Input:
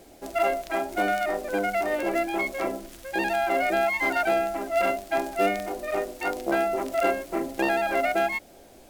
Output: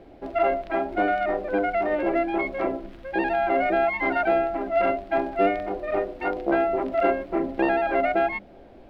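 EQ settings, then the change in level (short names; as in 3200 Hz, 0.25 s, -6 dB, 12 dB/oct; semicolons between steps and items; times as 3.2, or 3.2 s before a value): air absorption 380 m; low shelf 360 Hz +4 dB; notches 50/100/150/200/250 Hz; +2.5 dB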